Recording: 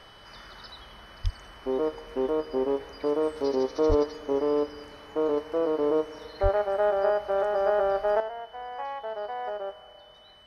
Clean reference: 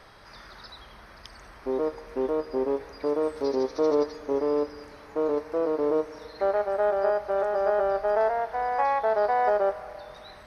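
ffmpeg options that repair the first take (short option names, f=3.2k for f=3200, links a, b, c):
-filter_complex "[0:a]bandreject=f=3k:w=30,asplit=3[a][b][c];[a]afade=t=out:st=1.23:d=0.02[d];[b]highpass=f=140:w=0.5412,highpass=f=140:w=1.3066,afade=t=in:st=1.23:d=0.02,afade=t=out:st=1.35:d=0.02[e];[c]afade=t=in:st=1.35:d=0.02[f];[d][e][f]amix=inputs=3:normalize=0,asplit=3[g][h][i];[g]afade=t=out:st=3.88:d=0.02[j];[h]highpass=f=140:w=0.5412,highpass=f=140:w=1.3066,afade=t=in:st=3.88:d=0.02,afade=t=out:st=4:d=0.02[k];[i]afade=t=in:st=4:d=0.02[l];[j][k][l]amix=inputs=3:normalize=0,asplit=3[m][n][o];[m]afade=t=out:st=6.42:d=0.02[p];[n]highpass=f=140:w=0.5412,highpass=f=140:w=1.3066,afade=t=in:st=6.42:d=0.02,afade=t=out:st=6.54:d=0.02[q];[o]afade=t=in:st=6.54:d=0.02[r];[p][q][r]amix=inputs=3:normalize=0,asetnsamples=n=441:p=0,asendcmd='8.2 volume volume 10.5dB',volume=0dB"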